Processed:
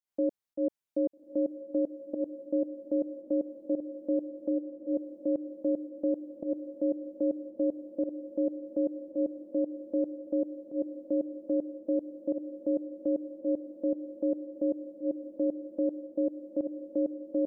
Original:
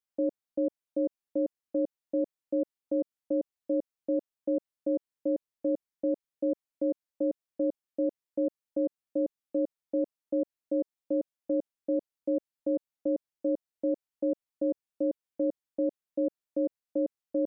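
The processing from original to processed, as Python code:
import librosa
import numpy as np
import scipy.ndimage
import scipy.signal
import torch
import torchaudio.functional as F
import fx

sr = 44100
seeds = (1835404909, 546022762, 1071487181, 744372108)

y = fx.volume_shaper(x, sr, bpm=112, per_beat=1, depth_db=-17, release_ms=138.0, shape='fast start')
y = fx.double_bandpass(y, sr, hz=390.0, octaves=0.71, at=(4.49, 4.93), fade=0.02)
y = fx.echo_diffused(y, sr, ms=1285, feedback_pct=58, wet_db=-11.5)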